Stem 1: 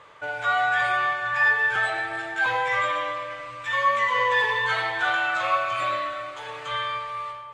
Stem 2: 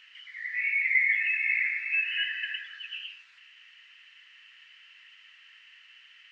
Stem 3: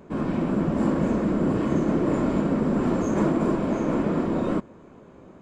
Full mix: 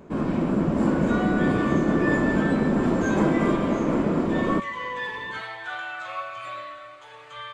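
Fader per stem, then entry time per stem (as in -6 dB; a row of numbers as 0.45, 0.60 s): -9.5 dB, off, +1.0 dB; 0.65 s, off, 0.00 s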